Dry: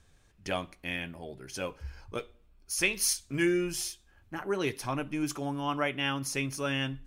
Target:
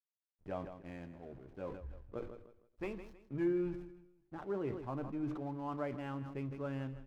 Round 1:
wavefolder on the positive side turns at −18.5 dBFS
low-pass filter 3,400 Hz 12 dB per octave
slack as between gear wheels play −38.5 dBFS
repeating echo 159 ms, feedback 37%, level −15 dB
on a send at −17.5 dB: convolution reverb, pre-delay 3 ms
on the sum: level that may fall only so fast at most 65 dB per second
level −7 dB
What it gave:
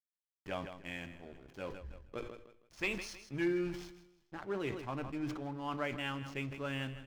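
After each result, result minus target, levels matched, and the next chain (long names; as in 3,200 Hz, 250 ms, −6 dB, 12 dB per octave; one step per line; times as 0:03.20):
4,000 Hz band +15.0 dB; slack as between gear wheels: distortion +7 dB
wavefolder on the positive side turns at −18.5 dBFS
low-pass filter 990 Hz 12 dB per octave
slack as between gear wheels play −38.5 dBFS
repeating echo 159 ms, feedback 37%, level −15 dB
on a send at −17.5 dB: convolution reverb, pre-delay 3 ms
on the sum: level that may fall only so fast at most 65 dB per second
level −7 dB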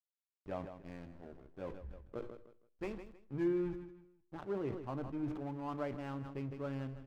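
slack as between gear wheels: distortion +8 dB
wavefolder on the positive side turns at −18.5 dBFS
low-pass filter 990 Hz 12 dB per octave
slack as between gear wheels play −47.5 dBFS
repeating echo 159 ms, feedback 37%, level −15 dB
on a send at −17.5 dB: convolution reverb, pre-delay 3 ms
on the sum: level that may fall only so fast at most 65 dB per second
level −7 dB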